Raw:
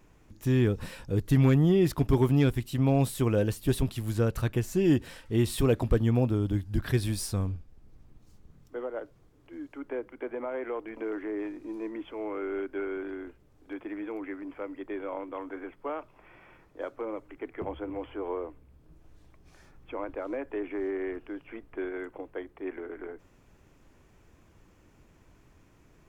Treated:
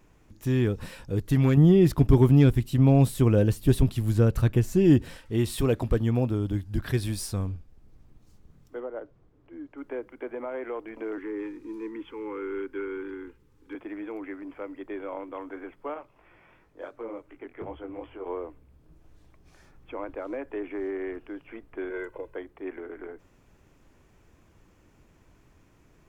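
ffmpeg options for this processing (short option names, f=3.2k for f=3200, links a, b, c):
-filter_complex "[0:a]asettb=1/sr,asplit=3[a][b][c];[a]atrim=end=1.574[d];[b]atrim=start=1.57:end=5.17,asetpts=PTS-STARTPTS,afade=t=in:d=0.004:c=qsin,afade=t=out:st=3.596:d=0.004:c=qsin,lowshelf=f=360:g=7.5[e];[c]atrim=start=5.166[f];[d][e]acrossfade=d=0.004:c1=hsin:c2=qsin[g];[g][f]acrossfade=d=0.004:c1=qsin:c2=hsin,asettb=1/sr,asplit=3[h][i][j];[h]atrim=end=8.804[k];[i]atrim=start=8.8:end=9.78,asetpts=PTS-STARTPTS,afade=t=in:d=0.004:c=qsin,afade=t=out:st=0.976:d=0.004:c=qsin,lowpass=f=1.5k:p=1[l];[j]atrim=start=9.776[m];[k][l]acrossfade=d=0.004:c1=hsin:c2=qsin[n];[n][m]acrossfade=d=0.004:c1=qsin:c2=hsin,asettb=1/sr,asplit=3[o][p][q];[o]atrim=end=11.184[r];[p]atrim=start=11.18:end=13.75,asetpts=PTS-STARTPTS,afade=t=in:d=0.004:c=qsin,afade=t=out:st=2.566:d=0.004:c=qsin,asuperstop=centerf=660:order=20:qfactor=2.4[s];[q]atrim=start=13.746[t];[r][s]acrossfade=d=0.004:c1=hsin:c2=qsin[u];[u][t]acrossfade=d=0.004:c1=qsin:c2=hsin,asettb=1/sr,asplit=3[v][w][x];[v]atrim=end=15.944[y];[w]atrim=start=15.94:end=18.27,asetpts=PTS-STARTPTS,afade=t=in:d=0.004:c=qsin,afade=t=out:st=2.326:d=0.004:c=qsin,flanger=delay=16.5:depth=7.1:speed=2.8[z];[x]atrim=start=18.266[aa];[y][z]acrossfade=d=0.004:c1=hsin:c2=qsin[ab];[ab][aa]acrossfade=d=0.004:c1=qsin:c2=hsin,asettb=1/sr,asplit=3[ac][ad][ae];[ac]atrim=end=21.904[af];[ad]atrim=start=21.9:end=22.36,asetpts=PTS-STARTPTS,afade=t=in:d=0.004:c=qsin,afade=t=out:st=0.456:d=0.004:c=qsin,aecho=1:1:2:0.79,atrim=end_sample=20286[ag];[ae]atrim=start=22.356[ah];[af][ag]acrossfade=d=0.004:c1=hsin:c2=qsin[ai];[ai][ah]acrossfade=d=0.004:c1=qsin:c2=hsin"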